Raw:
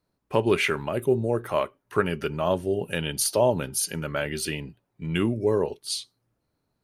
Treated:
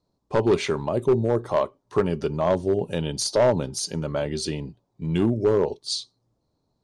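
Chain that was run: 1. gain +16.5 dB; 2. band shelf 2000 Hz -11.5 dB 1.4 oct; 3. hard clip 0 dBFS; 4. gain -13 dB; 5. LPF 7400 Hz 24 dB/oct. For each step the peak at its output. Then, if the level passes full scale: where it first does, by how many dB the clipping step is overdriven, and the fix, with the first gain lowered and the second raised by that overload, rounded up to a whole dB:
+10.0, +8.5, 0.0, -13.0, -12.5 dBFS; step 1, 8.5 dB; step 1 +7.5 dB, step 4 -4 dB

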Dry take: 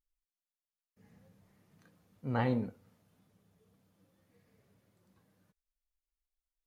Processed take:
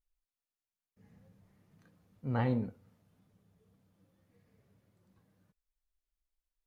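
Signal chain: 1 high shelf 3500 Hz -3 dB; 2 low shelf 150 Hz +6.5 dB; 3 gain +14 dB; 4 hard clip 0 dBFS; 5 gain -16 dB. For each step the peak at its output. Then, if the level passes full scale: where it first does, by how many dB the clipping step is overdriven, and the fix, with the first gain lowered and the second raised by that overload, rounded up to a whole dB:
-17.0, -17.0, -3.0, -3.0, -19.0 dBFS; no overload

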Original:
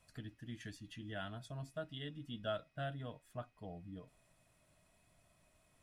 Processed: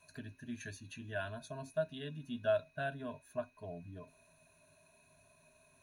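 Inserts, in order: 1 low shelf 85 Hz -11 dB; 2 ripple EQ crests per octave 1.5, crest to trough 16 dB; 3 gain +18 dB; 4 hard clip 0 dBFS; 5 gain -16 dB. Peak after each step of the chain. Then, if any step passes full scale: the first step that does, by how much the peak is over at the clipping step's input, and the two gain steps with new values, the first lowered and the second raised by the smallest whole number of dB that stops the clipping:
-28.5, -24.0, -6.0, -6.0, -22.0 dBFS; no overload

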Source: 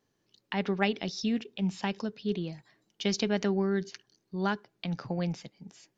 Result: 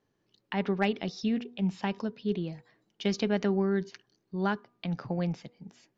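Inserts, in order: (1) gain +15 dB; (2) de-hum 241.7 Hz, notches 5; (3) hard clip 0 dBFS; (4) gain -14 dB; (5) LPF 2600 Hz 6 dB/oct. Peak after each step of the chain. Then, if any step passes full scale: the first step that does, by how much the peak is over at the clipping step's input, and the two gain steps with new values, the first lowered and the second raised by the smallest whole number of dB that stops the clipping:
+4.0, +4.0, 0.0, -14.0, -14.0 dBFS; step 1, 4.0 dB; step 1 +11 dB, step 4 -10 dB

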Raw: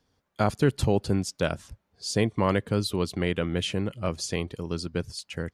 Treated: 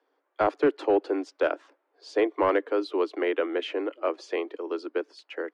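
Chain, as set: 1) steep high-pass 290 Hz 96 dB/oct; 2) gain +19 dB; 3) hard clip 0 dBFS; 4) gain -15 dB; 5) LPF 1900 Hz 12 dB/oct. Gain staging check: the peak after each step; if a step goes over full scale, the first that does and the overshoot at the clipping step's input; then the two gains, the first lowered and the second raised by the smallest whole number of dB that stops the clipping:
-12.5, +6.5, 0.0, -15.0, -14.5 dBFS; step 2, 6.5 dB; step 2 +12 dB, step 4 -8 dB

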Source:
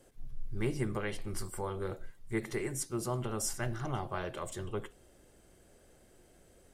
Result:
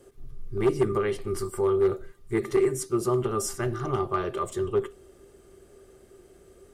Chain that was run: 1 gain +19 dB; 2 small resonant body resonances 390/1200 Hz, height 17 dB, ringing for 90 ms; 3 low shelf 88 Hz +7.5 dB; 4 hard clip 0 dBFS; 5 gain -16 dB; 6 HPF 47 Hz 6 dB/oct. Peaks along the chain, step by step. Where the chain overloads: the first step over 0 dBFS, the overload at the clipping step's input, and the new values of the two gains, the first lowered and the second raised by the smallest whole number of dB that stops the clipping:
-1.5, +7.0, +8.0, 0.0, -16.0, -14.0 dBFS; step 2, 8.0 dB; step 1 +11 dB, step 5 -8 dB

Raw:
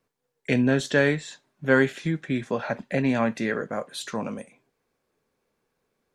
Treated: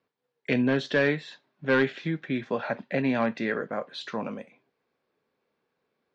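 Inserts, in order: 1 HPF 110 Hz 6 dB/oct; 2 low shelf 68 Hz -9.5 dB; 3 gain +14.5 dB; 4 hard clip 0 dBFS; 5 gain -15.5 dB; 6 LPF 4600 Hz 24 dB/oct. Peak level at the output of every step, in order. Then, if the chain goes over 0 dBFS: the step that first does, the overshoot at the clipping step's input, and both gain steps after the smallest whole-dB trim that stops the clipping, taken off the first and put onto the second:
-5.5, -6.0, +8.5, 0.0, -15.5, -14.5 dBFS; step 3, 8.5 dB; step 3 +5.5 dB, step 5 -6.5 dB

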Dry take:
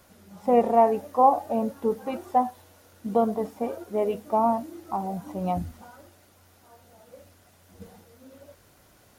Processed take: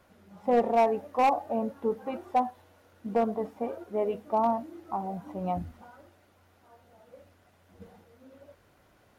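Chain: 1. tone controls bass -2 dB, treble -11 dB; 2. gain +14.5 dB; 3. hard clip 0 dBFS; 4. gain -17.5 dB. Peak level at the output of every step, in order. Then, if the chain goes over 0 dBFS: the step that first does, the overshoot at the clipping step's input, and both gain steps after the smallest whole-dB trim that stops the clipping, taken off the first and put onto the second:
-7.0, +7.5, 0.0, -17.5 dBFS; step 2, 7.5 dB; step 2 +6.5 dB, step 4 -9.5 dB

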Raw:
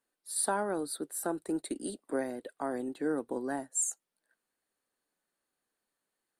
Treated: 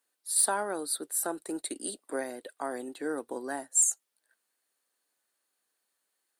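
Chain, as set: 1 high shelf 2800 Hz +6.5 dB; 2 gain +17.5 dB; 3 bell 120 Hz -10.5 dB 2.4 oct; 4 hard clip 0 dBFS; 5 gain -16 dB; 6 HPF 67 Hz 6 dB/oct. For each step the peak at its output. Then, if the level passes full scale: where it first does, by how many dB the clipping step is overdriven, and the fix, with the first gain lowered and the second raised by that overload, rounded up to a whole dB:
-11.5, +6.0, +6.0, 0.0, -16.0, -16.0 dBFS; step 2, 6.0 dB; step 2 +11.5 dB, step 5 -10 dB

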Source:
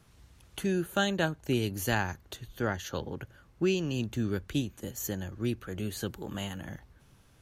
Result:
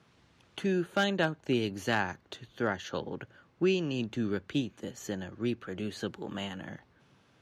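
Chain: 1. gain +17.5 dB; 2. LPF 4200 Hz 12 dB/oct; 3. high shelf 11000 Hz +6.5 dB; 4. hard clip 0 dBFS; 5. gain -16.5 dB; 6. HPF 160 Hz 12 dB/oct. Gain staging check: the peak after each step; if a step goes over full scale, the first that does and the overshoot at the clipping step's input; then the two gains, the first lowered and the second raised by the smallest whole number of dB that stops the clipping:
+5.0, +4.5, +4.5, 0.0, -16.5, -14.5 dBFS; step 1, 4.5 dB; step 1 +12.5 dB, step 5 -11.5 dB

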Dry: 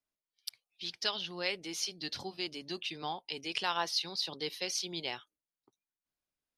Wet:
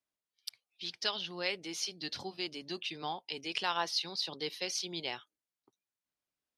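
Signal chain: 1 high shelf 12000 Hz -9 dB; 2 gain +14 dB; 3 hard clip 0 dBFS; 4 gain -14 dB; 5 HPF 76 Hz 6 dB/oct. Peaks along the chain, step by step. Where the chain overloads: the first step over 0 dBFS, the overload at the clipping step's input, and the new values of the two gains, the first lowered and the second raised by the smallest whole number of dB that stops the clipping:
-17.0, -3.0, -3.0, -17.0, -17.0 dBFS; no overload

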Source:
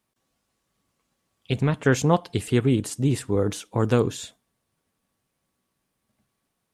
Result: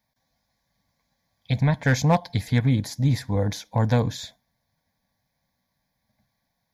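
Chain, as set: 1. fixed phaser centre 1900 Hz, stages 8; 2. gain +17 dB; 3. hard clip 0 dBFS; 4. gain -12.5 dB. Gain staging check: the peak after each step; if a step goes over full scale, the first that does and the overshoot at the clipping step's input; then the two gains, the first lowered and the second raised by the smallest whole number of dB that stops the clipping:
-10.5, +6.5, 0.0, -12.5 dBFS; step 2, 6.5 dB; step 2 +10 dB, step 4 -5.5 dB

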